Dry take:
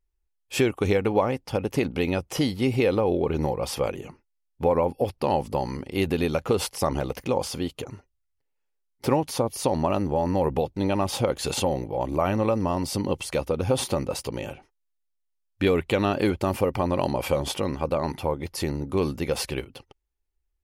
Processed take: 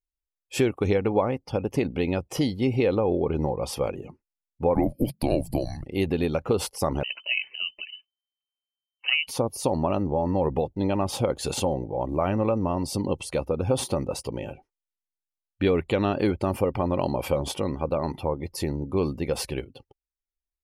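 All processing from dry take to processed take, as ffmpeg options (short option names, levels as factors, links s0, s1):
-filter_complex "[0:a]asettb=1/sr,asplit=3[s0][s1][s2];[s0]atrim=end=4.754[s3];[s1]atrim=start=4.75:end=5.86,asetpts=PTS-STARTPTS,afade=t=in:d=0.004:c=qsin,afade=t=out:st=1.106:d=0.004:c=qsin,aemphasis=mode=production:type=50kf,afreqshift=-230[s4];[s2]atrim=start=5.856[s5];[s3][s4]acrossfade=d=0.004:c1=hsin:c2=qsin[s6];[s6][s5]acrossfade=d=0.004:c1=qsin:c2=hsin,asettb=1/sr,asplit=3[s7][s8][s9];[s7]atrim=end=7.034[s10];[s8]atrim=start=7.03:end=9.27,asetpts=PTS-STARTPTS,afade=t=in:d=0.004:c=qsin,afade=t=out:st=2.236:d=0.004:c=qsin,aemphasis=mode=reproduction:type=75fm,lowpass=f=2600:t=q:w=0.5098,lowpass=f=2600:t=q:w=0.6013,lowpass=f=2600:t=q:w=0.9,lowpass=f=2600:t=q:w=2.563,afreqshift=-3100[s11];[s9]atrim=start=9.266[s12];[s10][s11]acrossfade=d=0.004:c1=hsin:c2=qsin[s13];[s13][s12]acrossfade=d=0.004:c1=qsin:c2=hsin,afftdn=nr=16:nf=-44,equalizer=f=2200:w=0.49:g=-3.5"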